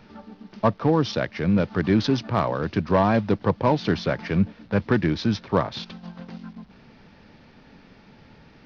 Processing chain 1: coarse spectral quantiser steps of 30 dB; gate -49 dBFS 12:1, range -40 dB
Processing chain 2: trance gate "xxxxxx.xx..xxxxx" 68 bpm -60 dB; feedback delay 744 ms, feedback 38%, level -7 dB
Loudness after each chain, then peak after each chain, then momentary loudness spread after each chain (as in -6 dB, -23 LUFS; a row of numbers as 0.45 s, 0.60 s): -24.0 LUFS, -24.0 LUFS; -8.0 dBFS, -7.0 dBFS; 17 LU, 16 LU